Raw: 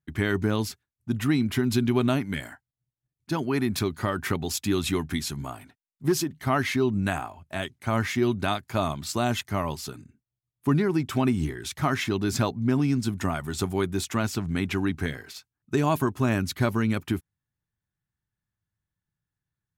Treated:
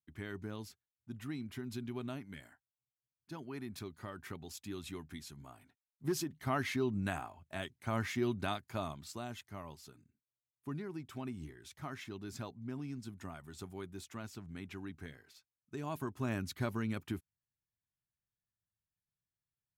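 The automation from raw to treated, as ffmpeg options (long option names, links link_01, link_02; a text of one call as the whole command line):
ffmpeg -i in.wav -af "volume=-3dB,afade=type=in:start_time=5.45:duration=0.85:silence=0.375837,afade=type=out:start_time=8.45:duration=0.84:silence=0.354813,afade=type=in:start_time=15.76:duration=0.56:silence=0.446684" out.wav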